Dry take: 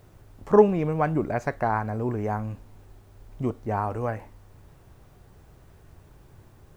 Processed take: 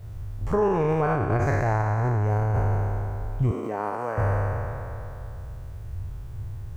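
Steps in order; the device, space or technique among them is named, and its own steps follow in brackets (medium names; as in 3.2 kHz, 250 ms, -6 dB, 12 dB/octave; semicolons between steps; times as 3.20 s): spectral sustain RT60 2.98 s; car stereo with a boomy subwoofer (resonant low shelf 150 Hz +12 dB, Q 1.5; peak limiter -15 dBFS, peak gain reduction 11 dB); 3.51–4.18 s: high-pass 210 Hz 24 dB/octave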